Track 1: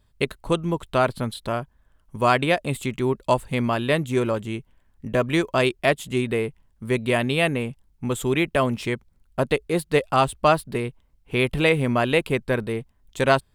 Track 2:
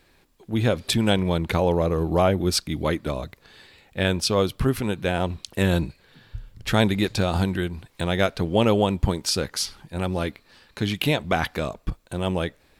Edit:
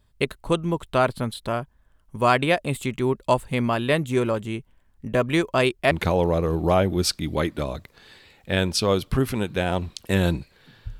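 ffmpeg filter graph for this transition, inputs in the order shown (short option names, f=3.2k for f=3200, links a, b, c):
-filter_complex "[0:a]apad=whole_dur=10.99,atrim=end=10.99,atrim=end=5.912[a];[1:a]atrim=start=1.388:end=6.47[b];[a][b]acrossfade=d=0.004:c1=hsin:c2=hsin"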